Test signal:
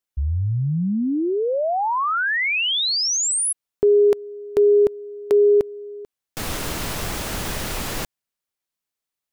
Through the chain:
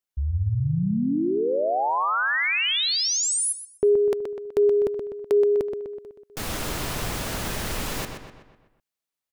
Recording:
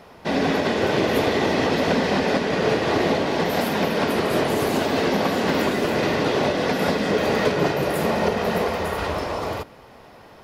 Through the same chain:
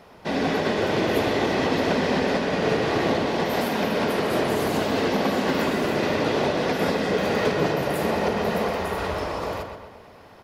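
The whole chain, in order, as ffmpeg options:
ffmpeg -i in.wav -filter_complex "[0:a]asplit=2[link_01][link_02];[link_02]adelay=125,lowpass=frequency=4200:poles=1,volume=-6dB,asplit=2[link_03][link_04];[link_04]adelay=125,lowpass=frequency=4200:poles=1,volume=0.51,asplit=2[link_05][link_06];[link_06]adelay=125,lowpass=frequency=4200:poles=1,volume=0.51,asplit=2[link_07][link_08];[link_08]adelay=125,lowpass=frequency=4200:poles=1,volume=0.51,asplit=2[link_09][link_10];[link_10]adelay=125,lowpass=frequency=4200:poles=1,volume=0.51,asplit=2[link_11][link_12];[link_12]adelay=125,lowpass=frequency=4200:poles=1,volume=0.51[link_13];[link_01][link_03][link_05][link_07][link_09][link_11][link_13]amix=inputs=7:normalize=0,volume=-3dB" out.wav

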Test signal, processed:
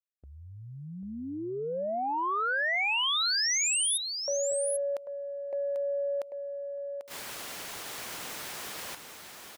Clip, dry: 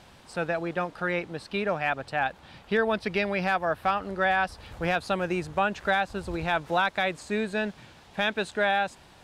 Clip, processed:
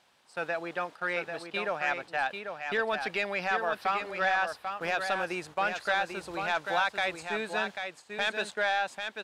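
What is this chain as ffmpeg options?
ffmpeg -i in.wav -filter_complex "[0:a]agate=range=-10dB:threshold=-38dB:ratio=16:detection=peak,highpass=frequency=730:poles=1,asoftclip=type=tanh:threshold=-18dB,asplit=2[link_01][link_02];[link_02]aecho=0:1:792:0.473[link_03];[link_01][link_03]amix=inputs=2:normalize=0" out.wav

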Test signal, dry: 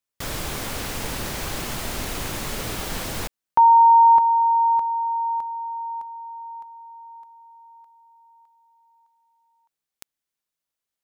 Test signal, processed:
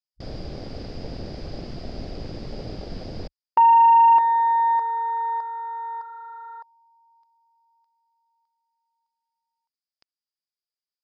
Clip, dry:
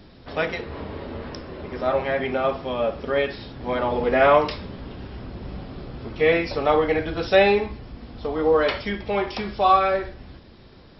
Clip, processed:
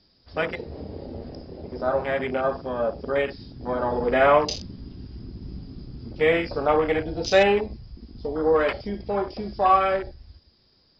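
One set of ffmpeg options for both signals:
ffmpeg -i in.wav -filter_complex "[0:a]acrossover=split=3200[link_01][link_02];[link_02]acompressor=threshold=-43dB:ratio=4:attack=1:release=60[link_03];[link_01][link_03]amix=inputs=2:normalize=0,lowpass=frequency=4900:width_type=q:width=15,afwtdn=0.0447,volume=-1.5dB" out.wav

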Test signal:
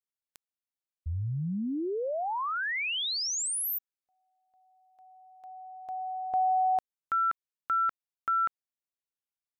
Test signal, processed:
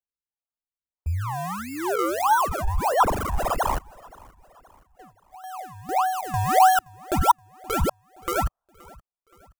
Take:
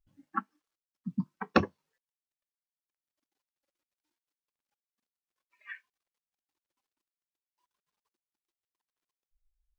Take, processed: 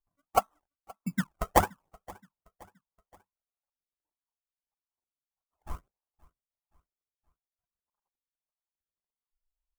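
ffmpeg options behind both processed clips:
ffmpeg -i in.wav -filter_complex "[0:a]acrusher=samples=35:mix=1:aa=0.000001:lfo=1:lforange=35:lforate=1.6,equalizer=frequency=125:width_type=o:width=1:gain=-9,equalizer=frequency=250:width_type=o:width=1:gain=-7,equalizer=frequency=500:width_type=o:width=1:gain=-4,equalizer=frequency=1000:width_type=o:width=1:gain=10,equalizer=frequency=2000:width_type=o:width=1:gain=-5,equalizer=frequency=4000:width_type=o:width=1:gain=-10,aphaser=in_gain=1:out_gain=1:delay=1.6:decay=0.48:speed=1:type=sinusoidal,agate=range=-21dB:threshold=-54dB:ratio=16:release=320:detection=peak,asplit=2[link_01][link_02];[link_02]aecho=0:1:523|1046|1569:0.0631|0.0297|0.0139[link_03];[link_01][link_03]amix=inputs=2:normalize=0,volume=6.5dB" out.wav

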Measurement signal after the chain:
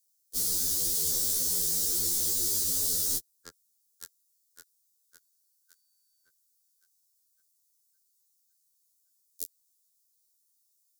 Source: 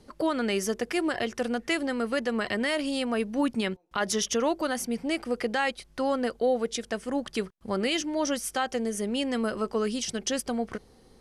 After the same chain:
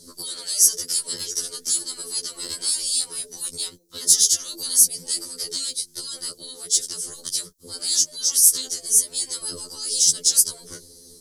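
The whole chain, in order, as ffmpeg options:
ffmpeg -i in.wav -filter_complex "[0:a]afftfilt=real='re*lt(hypot(re,im),0.0794)':imag='im*lt(hypot(re,im),0.0794)':win_size=1024:overlap=0.75,lowshelf=frequency=570:width_type=q:width=3:gain=6.5,acrossover=split=120|1200|3600[link_01][link_02][link_03][link_04];[link_03]asoftclip=type=tanh:threshold=-36.5dB[link_05];[link_01][link_02][link_05][link_04]amix=inputs=4:normalize=0,aexciter=amount=12.3:drive=8.1:freq=4000,afftfilt=real='re*2*eq(mod(b,4),0)':imag='im*2*eq(mod(b,4),0)':win_size=2048:overlap=0.75,volume=-2.5dB" out.wav

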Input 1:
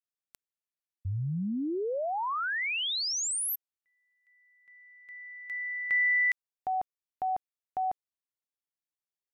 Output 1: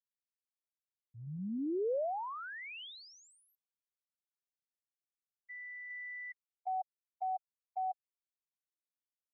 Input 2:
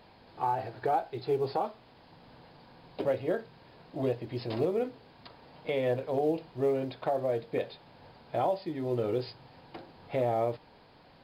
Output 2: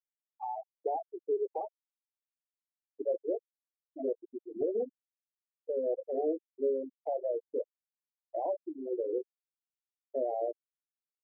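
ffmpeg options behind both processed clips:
ffmpeg -i in.wav -filter_complex "[0:a]highpass=180,afftfilt=real='re*gte(hypot(re,im),0.112)':imag='im*gte(hypot(re,im),0.112)':win_size=1024:overlap=0.75,lowpass=1100,lowshelf=frequency=380:gain=-10,acrossover=split=470|580[link_01][link_02][link_03];[link_03]acompressor=threshold=-48dB:ratio=6:attack=4.5:release=30:knee=1:detection=rms[link_04];[link_01][link_02][link_04]amix=inputs=3:normalize=0,volume=3dB" out.wav

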